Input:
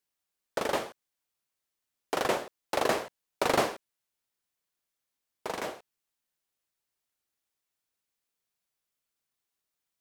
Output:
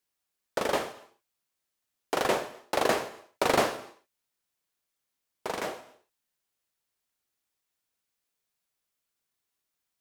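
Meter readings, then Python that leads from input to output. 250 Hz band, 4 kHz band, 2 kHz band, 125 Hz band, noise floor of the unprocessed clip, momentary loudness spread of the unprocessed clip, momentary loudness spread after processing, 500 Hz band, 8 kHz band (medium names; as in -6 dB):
+1.5 dB, +2.0 dB, +2.0 dB, +1.5 dB, under -85 dBFS, 16 LU, 15 LU, +2.0 dB, +2.0 dB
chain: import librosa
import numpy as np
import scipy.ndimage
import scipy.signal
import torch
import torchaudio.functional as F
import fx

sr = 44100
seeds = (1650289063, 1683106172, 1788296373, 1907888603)

y = fx.rev_gated(x, sr, seeds[0], gate_ms=310, shape='falling', drr_db=11.0)
y = y * librosa.db_to_amplitude(1.5)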